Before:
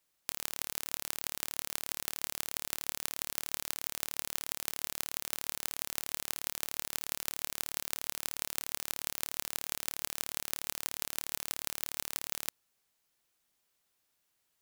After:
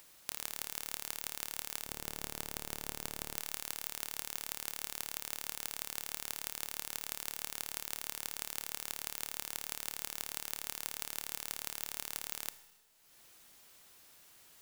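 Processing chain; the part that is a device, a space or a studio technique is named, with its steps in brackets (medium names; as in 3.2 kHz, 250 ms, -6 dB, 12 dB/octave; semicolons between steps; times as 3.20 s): 1.84–3.37 s: tilt shelf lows +6 dB, about 680 Hz; upward and downward compression (upward compressor, threshold -51 dBFS; compression 4:1, threshold -37 dBFS, peak gain reduction 8.5 dB); Schroeder reverb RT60 1.2 s, combs from 26 ms, DRR 13 dB; trim +4 dB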